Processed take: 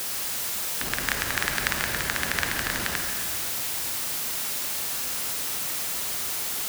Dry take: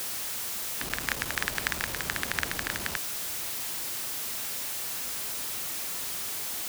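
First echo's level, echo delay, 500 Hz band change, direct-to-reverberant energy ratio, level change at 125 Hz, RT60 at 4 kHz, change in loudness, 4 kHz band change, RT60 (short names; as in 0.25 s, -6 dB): none, none, +4.5 dB, 3.0 dB, +5.0 dB, 2.0 s, +4.5 dB, +4.5 dB, 2.5 s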